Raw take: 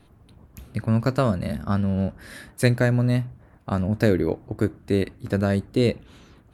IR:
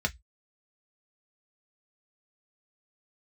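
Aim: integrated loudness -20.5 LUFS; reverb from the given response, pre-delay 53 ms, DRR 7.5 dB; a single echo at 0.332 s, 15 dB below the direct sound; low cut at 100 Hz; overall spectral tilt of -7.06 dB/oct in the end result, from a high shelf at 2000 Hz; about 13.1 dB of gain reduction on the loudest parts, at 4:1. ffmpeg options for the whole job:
-filter_complex "[0:a]highpass=100,highshelf=f=2k:g=-4.5,acompressor=threshold=-31dB:ratio=4,aecho=1:1:332:0.178,asplit=2[a][b];[1:a]atrim=start_sample=2205,adelay=53[c];[b][c]afir=irnorm=-1:irlink=0,volume=-15dB[d];[a][d]amix=inputs=2:normalize=0,volume=14dB"

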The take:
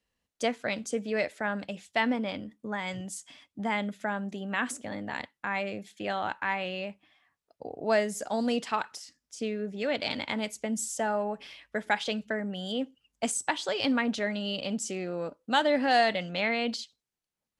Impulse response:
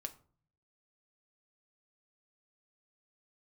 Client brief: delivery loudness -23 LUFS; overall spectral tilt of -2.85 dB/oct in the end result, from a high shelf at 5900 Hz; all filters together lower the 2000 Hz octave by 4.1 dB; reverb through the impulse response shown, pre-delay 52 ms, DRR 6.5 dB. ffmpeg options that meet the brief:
-filter_complex "[0:a]equalizer=f=2k:t=o:g=-6,highshelf=f=5.9k:g=9,asplit=2[a][b];[1:a]atrim=start_sample=2205,adelay=52[c];[b][c]afir=irnorm=-1:irlink=0,volume=-4dB[d];[a][d]amix=inputs=2:normalize=0,volume=7.5dB"

